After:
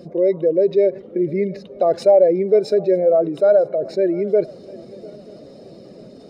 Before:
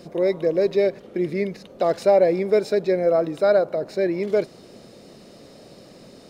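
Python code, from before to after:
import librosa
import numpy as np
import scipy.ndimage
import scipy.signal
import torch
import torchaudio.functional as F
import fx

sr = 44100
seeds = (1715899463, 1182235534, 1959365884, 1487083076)

y = fx.spec_expand(x, sr, power=1.5)
y = fx.echo_swing(y, sr, ms=934, ratio=3, feedback_pct=37, wet_db=-22.5)
y = y * librosa.db_to_amplitude(4.0)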